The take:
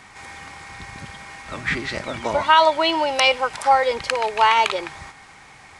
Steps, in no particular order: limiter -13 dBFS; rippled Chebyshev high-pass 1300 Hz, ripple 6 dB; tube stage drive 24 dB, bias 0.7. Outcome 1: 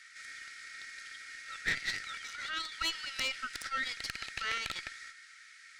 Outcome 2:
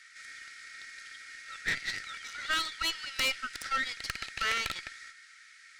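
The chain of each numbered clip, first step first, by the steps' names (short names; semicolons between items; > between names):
limiter > rippled Chebyshev high-pass > tube stage; rippled Chebyshev high-pass > tube stage > limiter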